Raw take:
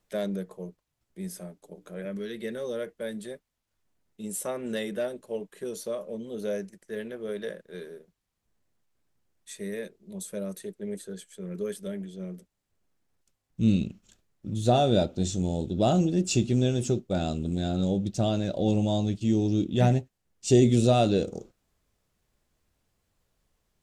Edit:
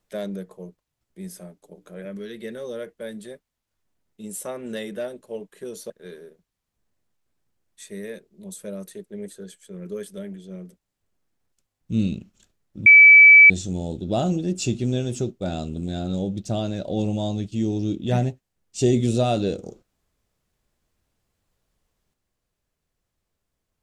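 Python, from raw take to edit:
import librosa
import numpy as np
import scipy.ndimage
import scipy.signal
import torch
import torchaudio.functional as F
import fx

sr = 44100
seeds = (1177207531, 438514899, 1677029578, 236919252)

y = fx.edit(x, sr, fx.cut(start_s=5.9, length_s=1.69),
    fx.bleep(start_s=14.55, length_s=0.64, hz=2300.0, db=-6.0), tone=tone)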